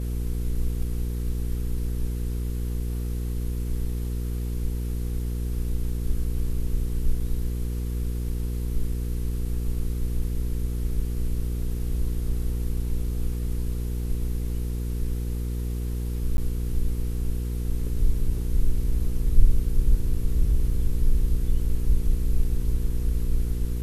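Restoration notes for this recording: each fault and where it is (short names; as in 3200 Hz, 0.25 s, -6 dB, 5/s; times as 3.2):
hum 60 Hz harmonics 8 -28 dBFS
16.37–16.38 gap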